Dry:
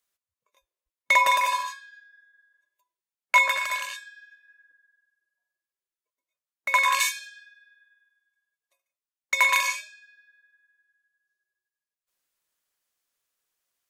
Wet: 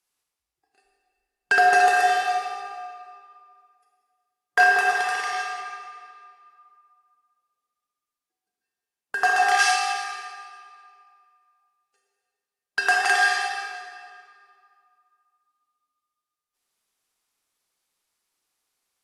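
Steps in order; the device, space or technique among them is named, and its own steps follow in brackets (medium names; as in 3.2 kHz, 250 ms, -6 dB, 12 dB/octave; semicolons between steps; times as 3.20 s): slowed and reverbed (tape speed -27%; reverberation RT60 2.1 s, pre-delay 29 ms, DRR 0 dB)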